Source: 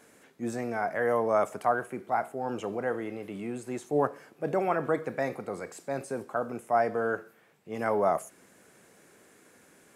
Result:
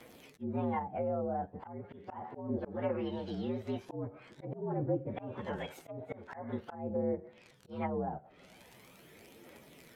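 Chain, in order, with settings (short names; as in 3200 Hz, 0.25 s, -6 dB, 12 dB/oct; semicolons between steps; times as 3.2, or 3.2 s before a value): inharmonic rescaling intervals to 117%; crackle 48/s -46 dBFS; in parallel at -2 dB: compressor 6:1, threshold -42 dBFS, peak gain reduction 18.5 dB; on the sum: phaser 0.42 Hz, delay 1.6 ms, feedback 36%; treble ducked by the level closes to 350 Hz, closed at -25 dBFS; auto swell 0.196 s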